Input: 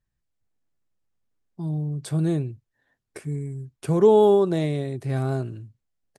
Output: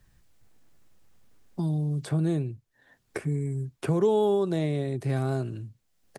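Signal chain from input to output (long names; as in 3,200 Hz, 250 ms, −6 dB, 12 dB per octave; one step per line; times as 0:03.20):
multiband upward and downward compressor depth 70%
level −2.5 dB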